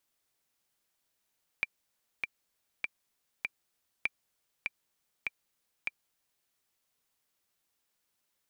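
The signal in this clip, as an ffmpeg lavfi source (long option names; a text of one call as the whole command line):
ffmpeg -f lavfi -i "aevalsrc='pow(10,(-15.5-3.5*gte(mod(t,4*60/99),60/99))/20)*sin(2*PI*2360*mod(t,60/99))*exp(-6.91*mod(t,60/99)/0.03)':duration=4.84:sample_rate=44100" out.wav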